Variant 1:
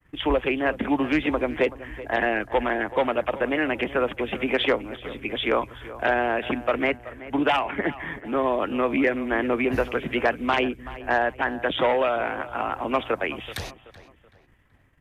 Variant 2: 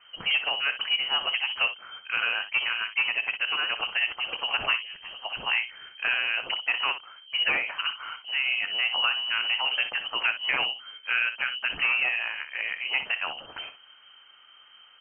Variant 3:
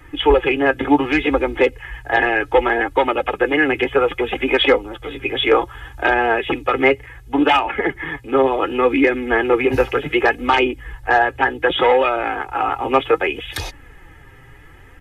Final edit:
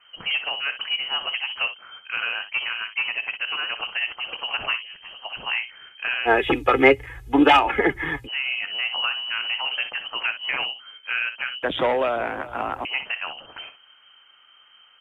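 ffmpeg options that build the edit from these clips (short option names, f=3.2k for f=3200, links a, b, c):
-filter_complex "[1:a]asplit=3[a][b][c];[a]atrim=end=6.29[d];[2:a]atrim=start=6.25:end=8.29[e];[b]atrim=start=8.25:end=11.632[f];[0:a]atrim=start=11.628:end=12.852[g];[c]atrim=start=12.848[h];[d][e]acrossfade=d=0.04:c1=tri:c2=tri[i];[i][f]acrossfade=d=0.04:c1=tri:c2=tri[j];[j][g]acrossfade=d=0.004:c1=hsin:c2=hsin[k];[k][h]acrossfade=d=0.004:c1=hsin:c2=hsin"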